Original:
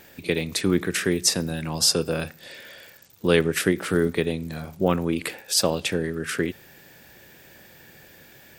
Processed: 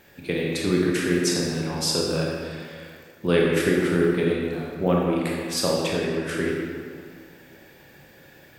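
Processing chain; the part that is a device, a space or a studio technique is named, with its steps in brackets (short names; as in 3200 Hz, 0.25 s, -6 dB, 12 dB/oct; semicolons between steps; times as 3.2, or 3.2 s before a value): swimming-pool hall (reverb RT60 2.2 s, pre-delay 22 ms, DRR -3 dB; high shelf 4000 Hz -6 dB); gain -3.5 dB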